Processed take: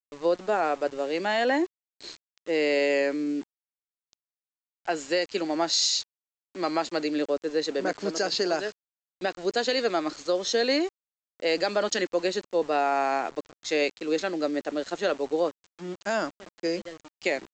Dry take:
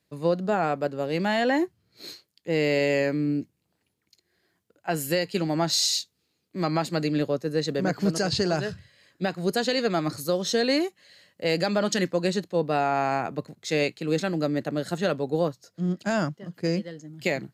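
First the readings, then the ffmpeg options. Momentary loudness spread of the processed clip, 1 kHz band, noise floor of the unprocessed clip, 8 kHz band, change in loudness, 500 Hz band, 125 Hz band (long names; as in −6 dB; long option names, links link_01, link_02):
10 LU, 0.0 dB, −76 dBFS, −1.0 dB, −1.0 dB, 0.0 dB, −17.5 dB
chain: -af "highpass=frequency=280:width=0.5412,highpass=frequency=280:width=1.3066,aresample=16000,aeval=exprs='val(0)*gte(abs(val(0)),0.00841)':channel_layout=same,aresample=44100"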